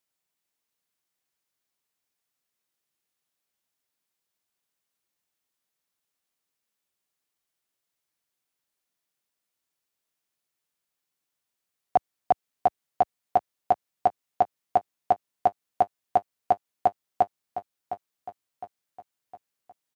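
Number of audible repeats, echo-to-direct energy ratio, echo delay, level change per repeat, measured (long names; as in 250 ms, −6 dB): 4, −10.5 dB, 710 ms, −6.5 dB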